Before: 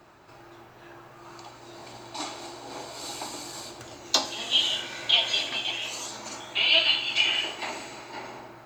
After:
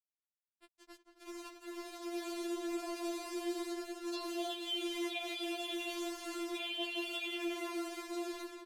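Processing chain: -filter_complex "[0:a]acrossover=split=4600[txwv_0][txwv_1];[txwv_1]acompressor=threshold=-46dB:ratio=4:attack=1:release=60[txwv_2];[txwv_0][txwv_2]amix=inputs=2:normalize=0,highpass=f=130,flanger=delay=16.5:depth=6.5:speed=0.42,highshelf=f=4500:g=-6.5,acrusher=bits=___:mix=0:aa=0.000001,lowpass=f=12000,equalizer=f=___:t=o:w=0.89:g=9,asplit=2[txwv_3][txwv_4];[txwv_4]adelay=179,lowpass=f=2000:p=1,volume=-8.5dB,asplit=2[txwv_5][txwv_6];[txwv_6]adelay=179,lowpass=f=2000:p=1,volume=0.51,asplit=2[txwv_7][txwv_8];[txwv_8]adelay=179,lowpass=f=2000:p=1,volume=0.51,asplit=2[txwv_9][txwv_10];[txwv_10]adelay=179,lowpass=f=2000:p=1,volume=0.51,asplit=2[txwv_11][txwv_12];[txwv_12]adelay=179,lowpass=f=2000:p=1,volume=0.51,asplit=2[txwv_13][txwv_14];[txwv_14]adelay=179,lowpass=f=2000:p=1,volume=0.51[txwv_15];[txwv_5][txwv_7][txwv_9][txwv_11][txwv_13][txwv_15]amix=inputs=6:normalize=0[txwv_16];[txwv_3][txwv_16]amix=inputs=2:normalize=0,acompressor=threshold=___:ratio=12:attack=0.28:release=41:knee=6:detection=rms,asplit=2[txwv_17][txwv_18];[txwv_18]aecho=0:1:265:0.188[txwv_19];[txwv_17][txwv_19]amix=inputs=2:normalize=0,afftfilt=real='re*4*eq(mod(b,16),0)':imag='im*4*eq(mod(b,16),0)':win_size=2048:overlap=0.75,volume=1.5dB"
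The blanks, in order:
6, 390, -34dB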